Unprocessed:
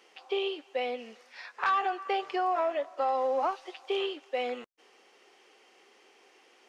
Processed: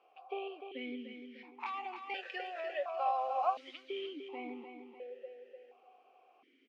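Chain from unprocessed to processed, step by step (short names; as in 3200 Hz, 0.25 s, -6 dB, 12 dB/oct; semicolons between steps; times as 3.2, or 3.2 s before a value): tilt -2.5 dB/oct, from 1.59 s +4 dB/oct, from 3.82 s -2.5 dB/oct; feedback echo 0.299 s, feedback 50%, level -8 dB; vowel sequencer 1.4 Hz; gain +3.5 dB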